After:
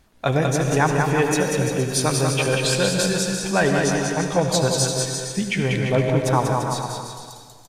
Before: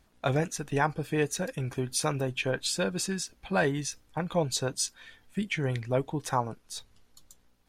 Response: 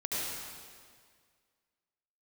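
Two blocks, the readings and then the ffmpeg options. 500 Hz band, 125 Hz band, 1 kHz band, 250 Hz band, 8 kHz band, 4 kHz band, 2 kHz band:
+10.0 dB, +10.5 dB, +9.5 dB, +10.0 dB, +9.5 dB, +9.5 dB, +9.5 dB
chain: -filter_complex "[0:a]aecho=1:1:190|342|463.6|560.9|638.7:0.631|0.398|0.251|0.158|0.1,asplit=2[link_01][link_02];[1:a]atrim=start_sample=2205[link_03];[link_02][link_03]afir=irnorm=-1:irlink=0,volume=-9dB[link_04];[link_01][link_04]amix=inputs=2:normalize=0,volume=4.5dB"

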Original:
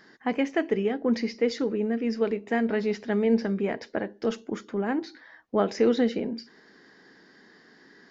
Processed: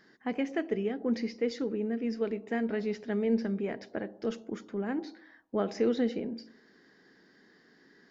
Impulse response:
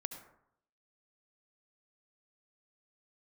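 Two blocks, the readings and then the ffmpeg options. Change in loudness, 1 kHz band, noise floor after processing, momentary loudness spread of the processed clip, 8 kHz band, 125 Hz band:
−5.5 dB, −8.0 dB, −62 dBFS, 9 LU, can't be measured, −5.0 dB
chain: -filter_complex "[0:a]asplit=2[link_01][link_02];[link_02]lowpass=frequency=1000:width=0.5412,lowpass=frequency=1000:width=1.3066[link_03];[1:a]atrim=start_sample=2205[link_04];[link_03][link_04]afir=irnorm=-1:irlink=0,volume=-7.5dB[link_05];[link_01][link_05]amix=inputs=2:normalize=0,volume=-7dB"

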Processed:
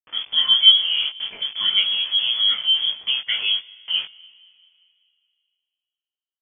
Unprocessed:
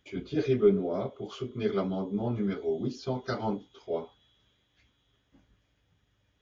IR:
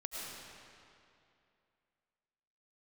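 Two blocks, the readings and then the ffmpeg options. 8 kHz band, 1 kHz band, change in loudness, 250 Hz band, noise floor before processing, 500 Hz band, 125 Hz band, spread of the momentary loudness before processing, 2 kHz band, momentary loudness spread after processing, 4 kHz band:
can't be measured, −3.0 dB, +13.5 dB, below −25 dB, −73 dBFS, below −20 dB, below −20 dB, 13 LU, +16.0 dB, 12 LU, +35.5 dB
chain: -filter_complex "[0:a]aeval=exprs='val(0)*gte(abs(val(0)),0.00891)':channel_layout=same,asplit=2[link_01][link_02];[link_02]adelay=20,volume=-3.5dB[link_03];[link_01][link_03]amix=inputs=2:normalize=0,asplit=2[link_04][link_05];[1:a]atrim=start_sample=2205[link_06];[link_05][link_06]afir=irnorm=-1:irlink=0,volume=-21.5dB[link_07];[link_04][link_07]amix=inputs=2:normalize=0,lowpass=frequency=3000:width_type=q:width=0.5098,lowpass=frequency=3000:width_type=q:width=0.6013,lowpass=frequency=3000:width_type=q:width=0.9,lowpass=frequency=3000:width_type=q:width=2.563,afreqshift=-3500,volume=7dB"

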